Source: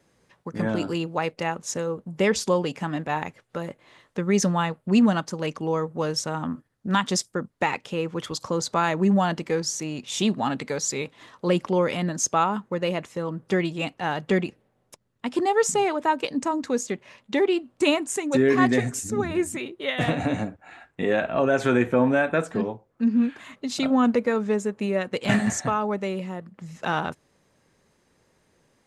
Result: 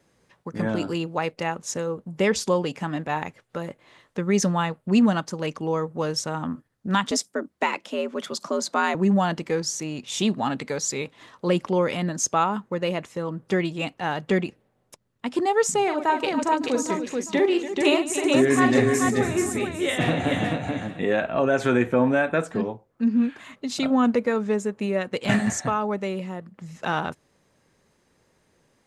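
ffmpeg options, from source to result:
-filter_complex "[0:a]asettb=1/sr,asplit=3[s0][s1][s2];[s0]atrim=end=7.114[s3];[s1]atrim=start=7.11:end=8.95,asetpts=PTS-STARTPTS,afade=t=in:d=0.004:c=qsin,afade=t=out:st=1.836:d=0.004:c=qsin,afreqshift=75[s4];[s2]atrim=start=8.946[s5];[s3][s4]acrossfade=d=0.004:c1=hsin:c2=qsin[s6];[s6][s5]acrossfade=d=0.004:c1=qsin:c2=hsin,asettb=1/sr,asplit=3[s7][s8][s9];[s7]atrim=end=15.834[s10];[s8]atrim=start=15.83:end=21,asetpts=PTS-STARTPTS,afade=t=in:d=0.004:c=qsin,afade=t=out:st=5.166:d=0.004:c=qsin,aecho=1:1:43|148|286|433|805|872:0.447|0.133|0.266|0.668|0.112|0.106,atrim=end_sample=227997[s11];[s9]atrim=start=20.996[s12];[s10][s11]acrossfade=d=0.004:c1=hsin:c2=qsin[s13];[s13][s12]acrossfade=d=0.004:c1=qsin:c2=hsin"

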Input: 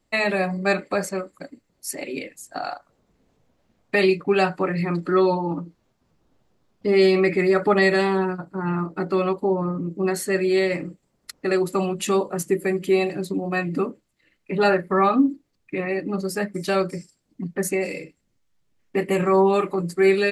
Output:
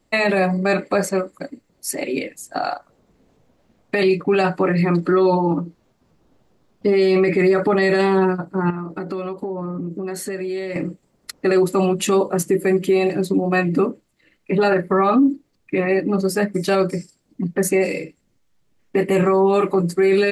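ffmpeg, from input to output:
-filter_complex "[0:a]asettb=1/sr,asplit=3[s0][s1][s2];[s0]atrim=end=8.704[s3];[s1]atrim=start=8.7:end=10.76,asetpts=PTS-STARTPTS,afade=t=in:d=0.004:c=qsin,afade=t=out:st=2.056:d=0.004:c=qsin,acompressor=threshold=0.0316:ratio=10:attack=3.2:release=140:knee=1:detection=peak[s4];[s2]atrim=start=10.756[s5];[s3][s4]acrossfade=d=0.004:c1=hsin:c2=qsin[s6];[s6][s5]acrossfade=d=0.004:c1=qsin:c2=hsin,equalizer=f=350:t=o:w=2.7:g=3,alimiter=limit=0.211:level=0:latency=1:release=14,volume=1.68"

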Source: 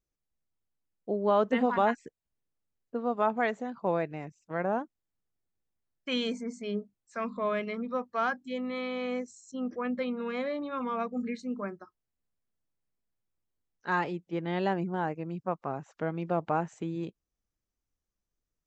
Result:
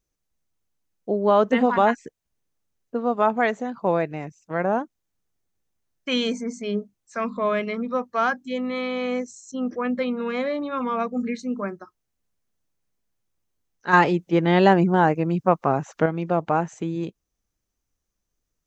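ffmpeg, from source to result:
-filter_complex "[0:a]asettb=1/sr,asplit=3[s0][s1][s2];[s0]atrim=end=13.934[s3];[s1]atrim=start=13.93:end=16.06,asetpts=PTS-STARTPTS,afade=t=in:d=0.004:c=qsin,afade=t=out:st=2.126:d=0.004:c=qsin,acontrast=65[s4];[s2]atrim=start=16.056[s5];[s3][s4]acrossfade=d=0.004:c1=hsin:c2=qsin[s6];[s6][s5]acrossfade=d=0.004:c1=qsin:c2=hsin,equalizer=f=6200:t=o:w=0.21:g=5.5,volume=2.24"

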